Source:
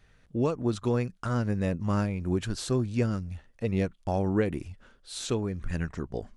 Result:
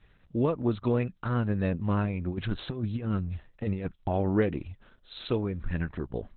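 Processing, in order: 2.28–4.1 negative-ratio compressor -29 dBFS, ratio -0.5; gain +1 dB; Opus 8 kbps 48000 Hz

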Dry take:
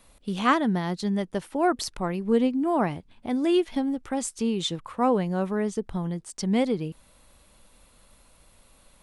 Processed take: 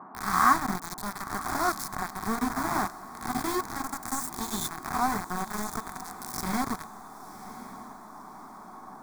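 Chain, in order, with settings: spectral swells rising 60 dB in 1.01 s; bell 120 Hz -4.5 dB 1 oct; de-hum 57.42 Hz, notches 18; in parallel at +2 dB: compressor 6:1, threshold -31 dBFS, peak gain reduction 16 dB; on the sum: flange 1.3 Hz, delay 4 ms, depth 9.1 ms, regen -62%; sample gate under -22.5 dBFS; band noise 180–1100 Hz -44 dBFS; fixed phaser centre 1200 Hz, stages 4; small resonant body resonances 450/750/1100 Hz, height 7 dB, ringing for 85 ms; on a send: diffused feedback echo 1.046 s, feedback 44%, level -15 dB

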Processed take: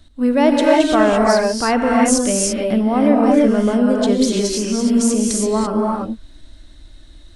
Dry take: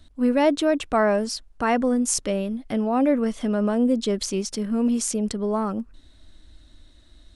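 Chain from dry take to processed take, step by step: non-linear reverb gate 0.36 s rising, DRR -2 dB; gain +3.5 dB

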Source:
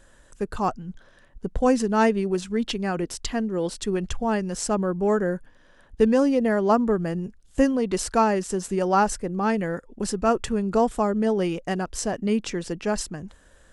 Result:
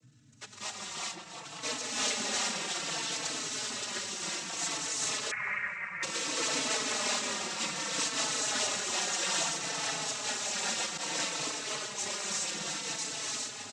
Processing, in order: half-waves squared off; differentiator; repeats that get brighter 0.175 s, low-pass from 200 Hz, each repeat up 2 oct, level 0 dB; non-linear reverb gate 0.45 s rising, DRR -4.5 dB; hum 50 Hz, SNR 24 dB; noise vocoder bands 12; 5.31–6.03 EQ curve 170 Hz 0 dB, 300 Hz -24 dB, 2200 Hz +13 dB, 3400 Hz -28 dB; 10.97–12.03 expander -26 dBFS; endless flanger 4.1 ms -0.61 Hz; gain -2 dB

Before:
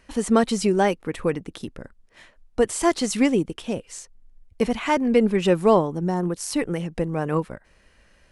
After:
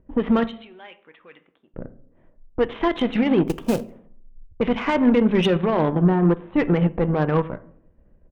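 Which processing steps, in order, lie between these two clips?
half-wave gain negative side -3 dB; low-pass opened by the level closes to 390 Hz, open at -17 dBFS; downsampling 8000 Hz; in parallel at -1 dB: level quantiser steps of 15 dB; on the sum: limiter -17.5 dBFS, peak gain reduction 13 dB; 0.47–1.74 differentiator; 3.47–3.91 short-mantissa float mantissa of 2-bit; on a send at -9.5 dB: reverb RT60 0.60 s, pre-delay 5 ms; on the sum: added harmonics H 7 -25 dB, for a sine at -13 dBFS; gain +5.5 dB

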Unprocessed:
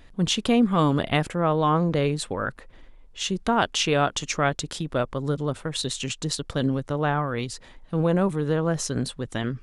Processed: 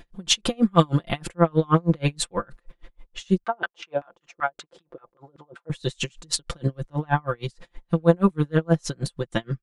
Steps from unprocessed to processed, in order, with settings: comb 5.8 ms, depth 79%; 3.44–5.7 LFO band-pass saw down 5.2 Hz 330–1600 Hz; dB-linear tremolo 6.3 Hz, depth 37 dB; gain +5 dB

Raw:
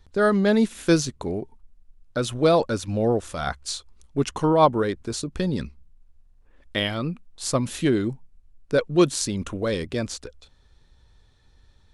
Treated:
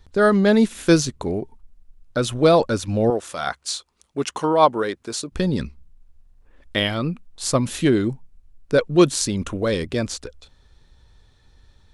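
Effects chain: 3.1–5.32 HPF 450 Hz 6 dB/oct; gain +3.5 dB

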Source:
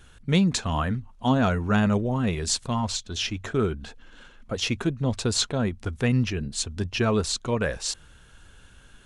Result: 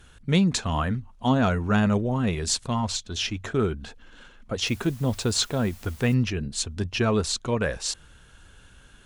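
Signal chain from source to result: added harmonics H 4 -38 dB, 5 -43 dB, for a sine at -9 dBFS; 4.65–6.13 added noise white -51 dBFS

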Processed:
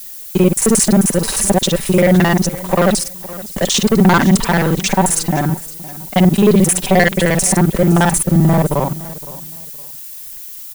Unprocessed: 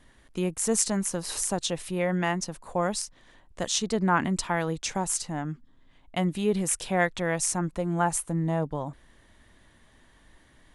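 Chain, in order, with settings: local time reversal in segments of 44 ms; dynamic EQ 5800 Hz, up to -6 dB, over -42 dBFS, Q 0.73; sample leveller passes 3; added noise violet -38 dBFS; comb 5.2 ms, depth 41%; on a send: feedback echo 0.514 s, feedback 27%, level -18 dB; on the sum: gain +5.5 dB

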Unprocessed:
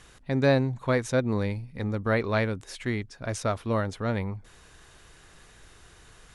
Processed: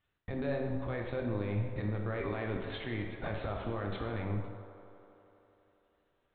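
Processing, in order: gate -42 dBFS, range -33 dB; reverse; compressor 6:1, threshold -33 dBFS, peak gain reduction 15.5 dB; reverse; LPC vocoder at 8 kHz pitch kept; limiter -30.5 dBFS, peak gain reduction 11 dB; on a send: band-limited delay 82 ms, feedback 85%, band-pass 720 Hz, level -12 dB; on the sum: two-slope reverb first 0.98 s, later 2.5 s, DRR 1.5 dB; gain +4.5 dB

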